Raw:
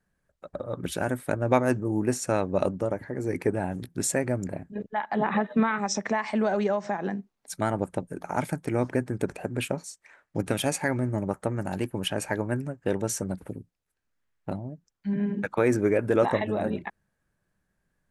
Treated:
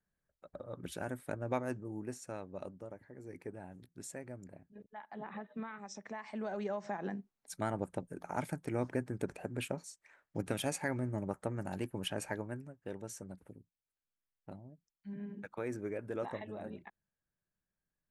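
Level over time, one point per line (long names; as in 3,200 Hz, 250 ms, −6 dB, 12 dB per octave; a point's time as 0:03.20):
0:01.36 −12 dB
0:02.54 −19.5 dB
0:05.93 −19.5 dB
0:06.99 −9 dB
0:12.27 −9 dB
0:12.67 −16.5 dB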